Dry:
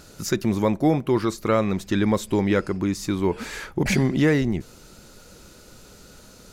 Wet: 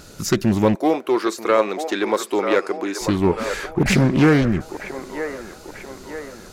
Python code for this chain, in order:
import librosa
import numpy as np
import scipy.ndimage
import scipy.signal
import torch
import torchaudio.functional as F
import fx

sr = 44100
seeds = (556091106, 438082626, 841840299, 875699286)

y = fx.highpass(x, sr, hz=340.0, slope=24, at=(0.75, 3.01))
y = fx.echo_wet_bandpass(y, sr, ms=939, feedback_pct=52, hz=910.0, wet_db=-6.5)
y = fx.doppler_dist(y, sr, depth_ms=0.36)
y = F.gain(torch.from_numpy(y), 4.5).numpy()